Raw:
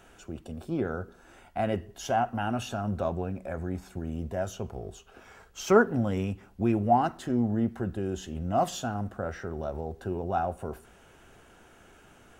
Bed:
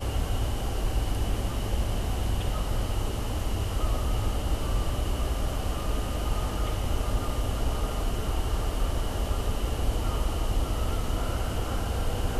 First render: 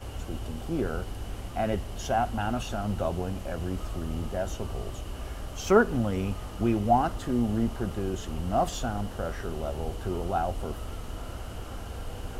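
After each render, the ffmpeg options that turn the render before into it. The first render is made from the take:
-filter_complex "[1:a]volume=0.355[s0];[0:a][s0]amix=inputs=2:normalize=0"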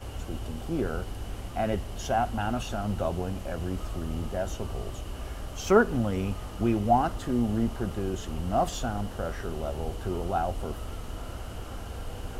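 -af anull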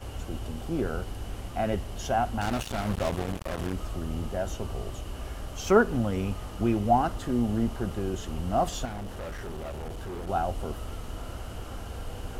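-filter_complex "[0:a]asettb=1/sr,asplit=3[s0][s1][s2];[s0]atrim=end=2.414[s3];[s1]atrim=start=2.41:end=3.73,asetpts=PTS-STARTPTS,afade=t=in:d=0.004:c=qsin,afade=t=out:st=1.316:d=0.004:c=qsin,acrusher=bits=4:mix=0:aa=0.5[s4];[s2]atrim=start=3.726[s5];[s3][s4]acrossfade=d=0.004:c1=hsin:c2=qsin[s6];[s6][s5]acrossfade=d=0.004:c1=qsin:c2=hsin,asettb=1/sr,asplit=3[s7][s8][s9];[s7]atrim=end=8.854[s10];[s8]atrim=start=8.85:end=10.29,asetpts=PTS-STARTPTS,afade=t=in:d=0.004:c=qsin,afade=t=out:st=1.436:d=0.004:c=qsin,volume=47.3,asoftclip=hard,volume=0.0211[s11];[s9]atrim=start=10.286[s12];[s10][s11]acrossfade=d=0.004:c1=hsin:c2=qsin[s13];[s13][s12]acrossfade=d=0.004:c1=qsin:c2=hsin"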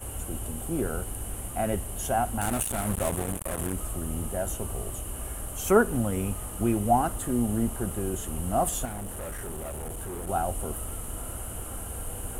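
-af "highshelf=f=7000:t=q:w=3:g=12.5"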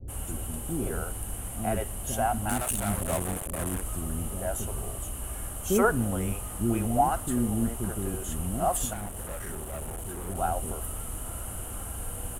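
-filter_complex "[0:a]acrossover=split=410[s0][s1];[s1]adelay=80[s2];[s0][s2]amix=inputs=2:normalize=0"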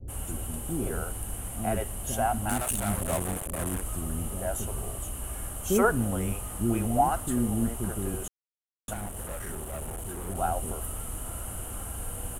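-filter_complex "[0:a]asplit=3[s0][s1][s2];[s0]atrim=end=8.28,asetpts=PTS-STARTPTS,afade=t=out:st=8.276:d=0.004:c=hsin[s3];[s1]atrim=start=8.28:end=8.88,asetpts=PTS-STARTPTS,volume=0[s4];[s2]atrim=start=8.88,asetpts=PTS-STARTPTS,afade=t=in:d=0.004:c=hsin[s5];[s3][s4][s5]concat=n=3:v=0:a=1"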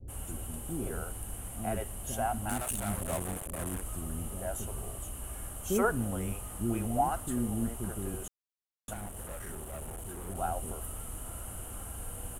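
-af "volume=0.562"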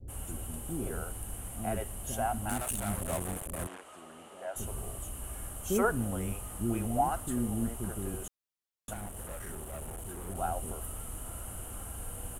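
-filter_complex "[0:a]asplit=3[s0][s1][s2];[s0]afade=t=out:st=3.66:d=0.02[s3];[s1]highpass=500,lowpass=4400,afade=t=in:st=3.66:d=0.02,afade=t=out:st=4.55:d=0.02[s4];[s2]afade=t=in:st=4.55:d=0.02[s5];[s3][s4][s5]amix=inputs=3:normalize=0"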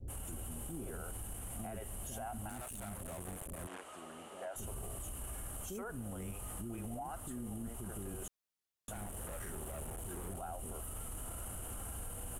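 -af "acompressor=threshold=0.0141:ratio=6,alimiter=level_in=3.55:limit=0.0631:level=0:latency=1:release=12,volume=0.282"

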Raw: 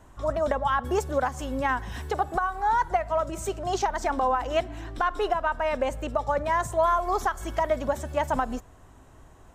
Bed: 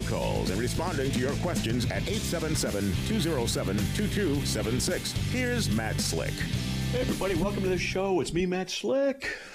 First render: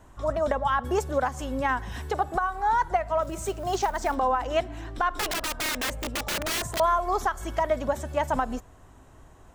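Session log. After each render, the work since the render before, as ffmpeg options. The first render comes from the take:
-filter_complex "[0:a]asplit=3[s0][s1][s2];[s0]afade=t=out:st=3.22:d=0.02[s3];[s1]acrusher=bits=6:mode=log:mix=0:aa=0.000001,afade=t=in:st=3.22:d=0.02,afade=t=out:st=4.14:d=0.02[s4];[s2]afade=t=in:st=4.14:d=0.02[s5];[s3][s4][s5]amix=inputs=3:normalize=0,asettb=1/sr,asplit=3[s6][s7][s8];[s6]atrim=end=5.174[s9];[s7]atrim=start=5.17:end=6.8,asetpts=PTS-STARTPTS,afade=t=in:d=0.004:c=qsin,afade=t=out:st=1.626:d=0.004:c=qsin,aeval=exprs='(mod(15*val(0)+1,2)-1)/15':c=same[s10];[s8]atrim=start=6.796[s11];[s9][s10]acrossfade=d=0.004:c1=hsin:c2=qsin[s12];[s12][s11]acrossfade=d=0.004:c1=qsin:c2=hsin"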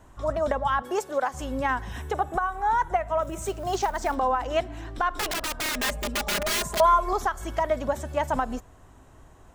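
-filter_complex "[0:a]asettb=1/sr,asplit=3[s0][s1][s2];[s0]atrim=end=0.824[s3];[s1]atrim=start=0.82:end=1.34,asetpts=PTS-STARTPTS,afade=t=in:d=0.004:c=qsin,afade=t=out:st=0.516:d=0.004:c=qsin,highpass=340[s4];[s2]atrim=start=1.336[s5];[s3][s4]acrossfade=d=0.004:c1=hsin:c2=qsin[s6];[s6][s5]acrossfade=d=0.004:c1=qsin:c2=hsin,asettb=1/sr,asplit=3[s7][s8][s9];[s7]atrim=end=1.924[s10];[s8]atrim=start=1.92:end=3.42,asetpts=PTS-STARTPTS,afade=t=in:d=0.004:c=qsin,afade=t=out:st=1.496:d=0.004:c=qsin,equalizer=f=4600:t=o:w=0.21:g=-15[s11];[s9]atrim=start=3.416[s12];[s10][s11]acrossfade=d=0.004:c1=hsin:c2=qsin[s13];[s13][s12]acrossfade=d=0.004:c1=qsin:c2=hsin,asettb=1/sr,asplit=3[s14][s15][s16];[s14]atrim=end=5.744[s17];[s15]atrim=start=5.74:end=7.13,asetpts=PTS-STARTPTS,afade=t=in:d=0.004:c=qsin,afade=t=out:st=1.386:d=0.004:c=qsin,aecho=1:1:4.9:0.85,atrim=end_sample=61299[s18];[s16]atrim=start=7.126[s19];[s17][s18]acrossfade=d=0.004:c1=hsin:c2=qsin[s20];[s20][s19]acrossfade=d=0.004:c1=qsin:c2=hsin"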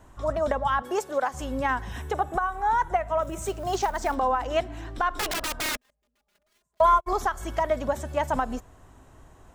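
-filter_complex "[0:a]asplit=3[s0][s1][s2];[s0]afade=t=out:st=5.75:d=0.02[s3];[s1]agate=range=0.00501:threshold=0.0891:ratio=16:release=100:detection=peak,afade=t=in:st=5.75:d=0.02,afade=t=out:st=7.06:d=0.02[s4];[s2]afade=t=in:st=7.06:d=0.02[s5];[s3][s4][s5]amix=inputs=3:normalize=0"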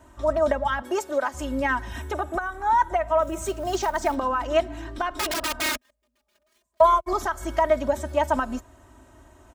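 -af "highpass=54,aecho=1:1:3.2:0.75"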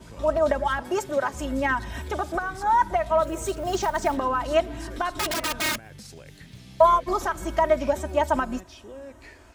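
-filter_complex "[1:a]volume=0.168[s0];[0:a][s0]amix=inputs=2:normalize=0"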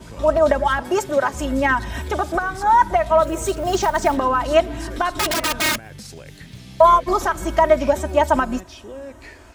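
-af "volume=2,alimiter=limit=0.794:level=0:latency=1"

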